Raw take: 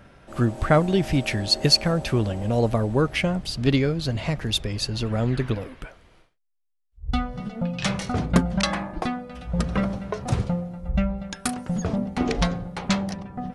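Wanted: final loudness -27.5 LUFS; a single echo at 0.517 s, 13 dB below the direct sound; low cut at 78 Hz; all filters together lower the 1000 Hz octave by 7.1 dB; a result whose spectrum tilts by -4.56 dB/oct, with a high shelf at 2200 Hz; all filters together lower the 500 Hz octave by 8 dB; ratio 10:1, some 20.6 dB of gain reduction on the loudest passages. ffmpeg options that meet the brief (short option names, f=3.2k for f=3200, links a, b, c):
-af "highpass=78,equalizer=f=500:t=o:g=-8.5,equalizer=f=1k:t=o:g=-8,highshelf=f=2.2k:g=4.5,acompressor=threshold=-31dB:ratio=10,aecho=1:1:517:0.224,volume=8dB"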